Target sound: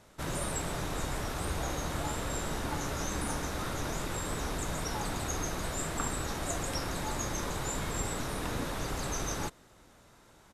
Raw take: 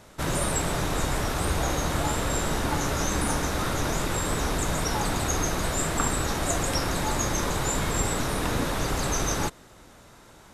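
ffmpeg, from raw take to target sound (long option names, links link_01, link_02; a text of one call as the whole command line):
ffmpeg -i in.wav -af "aresample=32000,aresample=44100,volume=-8dB" out.wav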